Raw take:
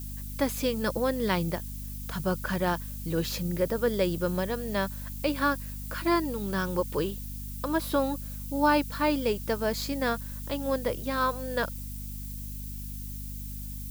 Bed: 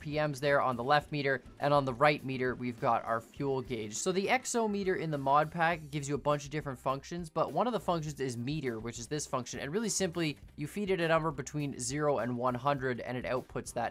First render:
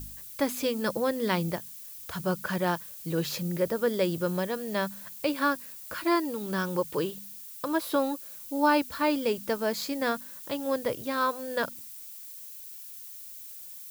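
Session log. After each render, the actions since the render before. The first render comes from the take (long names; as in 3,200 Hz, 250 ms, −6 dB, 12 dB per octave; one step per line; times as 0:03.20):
hum removal 50 Hz, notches 5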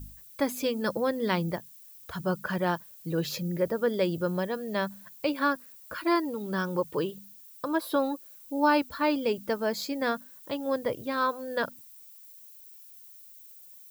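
broadband denoise 10 dB, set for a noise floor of −44 dBFS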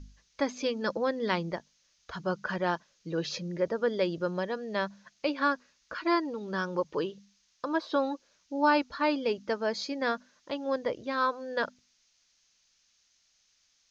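Chebyshev low-pass filter 6,500 Hz, order 6
parametric band 110 Hz −8.5 dB 1.4 octaves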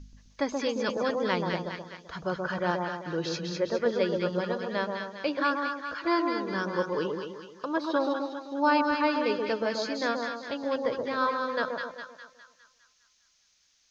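echo with a time of its own for lows and highs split 1,200 Hz, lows 129 ms, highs 204 ms, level −3.5 dB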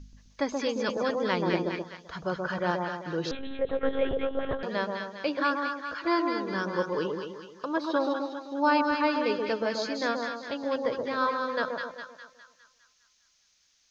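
0:01.41–0:01.82: hollow resonant body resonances 330/2,400 Hz, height 8 dB → 13 dB, ringing for 20 ms
0:03.31–0:04.63: one-pitch LPC vocoder at 8 kHz 270 Hz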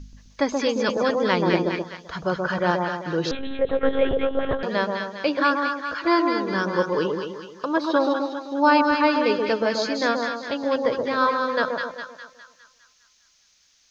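level +6.5 dB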